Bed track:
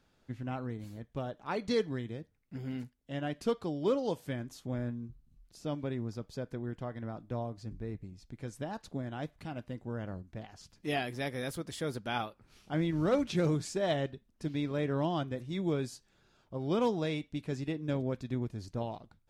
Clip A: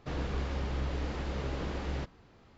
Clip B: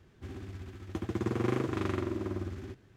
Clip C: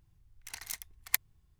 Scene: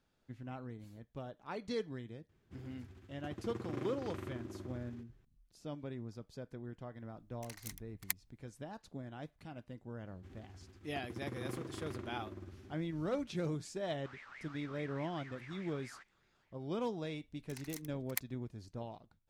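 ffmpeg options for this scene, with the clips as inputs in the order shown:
-filter_complex "[2:a]asplit=2[s0][s1];[3:a]asplit=2[s2][s3];[0:a]volume=0.398[s4];[1:a]aeval=exprs='val(0)*sin(2*PI*1700*n/s+1700*0.3/4.8*sin(2*PI*4.8*n/s))':c=same[s5];[s0]atrim=end=2.96,asetpts=PTS-STARTPTS,volume=0.251,afade=t=in:d=0.004:c=hsin,afade=t=out:st=2.956:d=0.004:c=hsin,adelay=2290[s6];[s2]atrim=end=1.59,asetpts=PTS-STARTPTS,volume=0.376,afade=t=in:d=0.004:c=hsin,afade=t=out:st=1.586:d=0.004:c=hsin,adelay=6960[s7];[s1]atrim=end=2.96,asetpts=PTS-STARTPTS,volume=0.224,afade=t=in:d=0.004:c=hsin,afade=t=out:st=2.956:d=0.004:c=hsin,adelay=10010[s8];[s5]atrim=end=2.57,asetpts=PTS-STARTPTS,volume=0.133,afade=t=in:d=0.004:c=hsin,afade=t=out:st=2.566:d=0.004:c=hsin,adelay=13980[s9];[s3]atrim=end=1.59,asetpts=PTS-STARTPTS,volume=0.335,afade=t=in:d=0.004:c=hsin,afade=t=out:st=1.586:d=0.004:c=hsin,adelay=17030[s10];[s4][s6][s7][s8][s9][s10]amix=inputs=6:normalize=0"

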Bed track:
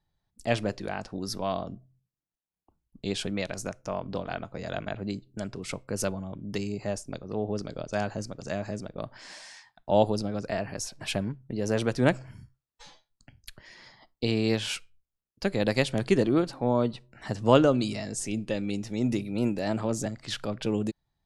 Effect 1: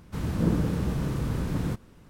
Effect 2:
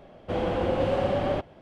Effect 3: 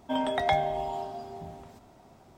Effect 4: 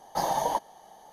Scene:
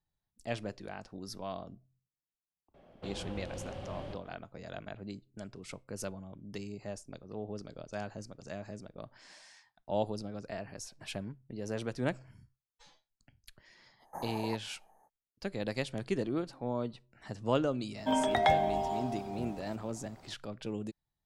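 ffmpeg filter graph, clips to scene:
-filter_complex "[0:a]volume=0.316[s0];[2:a]acrossover=split=140|3000[s1][s2][s3];[s2]acompressor=threshold=0.0251:ratio=6:attack=3.2:release=140:knee=2.83:detection=peak[s4];[s1][s4][s3]amix=inputs=3:normalize=0[s5];[4:a]asuperstop=centerf=3800:order=8:qfactor=0.73[s6];[s5]atrim=end=1.61,asetpts=PTS-STARTPTS,volume=0.316,afade=t=in:d=0.004:c=hsin,afade=t=out:st=1.606:d=0.004:c=hsin,adelay=2740[s7];[s6]atrim=end=1.12,asetpts=PTS-STARTPTS,volume=0.2,afade=t=in:d=0.05,afade=t=out:st=1.07:d=0.05,adelay=13980[s8];[3:a]atrim=end=2.37,asetpts=PTS-STARTPTS,volume=0.944,afade=t=in:d=0.004:c=hsin,afade=t=out:st=2.366:d=0.004:c=hsin,adelay=17970[s9];[s0][s7][s8][s9]amix=inputs=4:normalize=0"

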